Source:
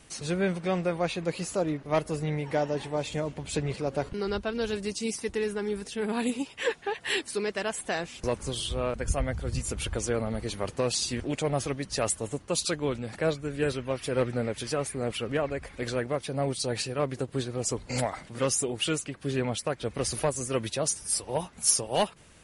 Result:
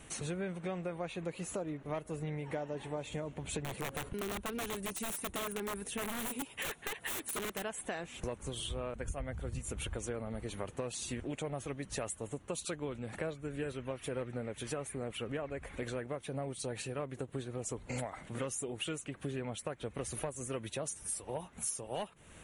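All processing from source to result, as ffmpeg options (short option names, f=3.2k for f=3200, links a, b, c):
-filter_complex "[0:a]asettb=1/sr,asplit=3[a][b][c];[a]atrim=end=3.644[d];[b]atrim=start=3.64:end=7.64,asetpts=PTS-STARTPTS,afade=t=in:d=0.004:c=qsin,afade=t=out:st=3.996:d=0.004:c=qsin,equalizer=f=10k:t=o:w=0.35:g=10.5,aeval=exprs='(mod(16.8*val(0)+1,2)-1)/16.8':c=same[e];[c]atrim=start=7.636[f];[d][e]acrossfade=d=0.004:c1=hsin:c2=qsin[g];[g][f]acrossfade=d=0.004:c1=qsin:c2=hsin,equalizer=f=4.9k:t=o:w=0.41:g=-14.5,acompressor=threshold=-39dB:ratio=5,volume=2dB"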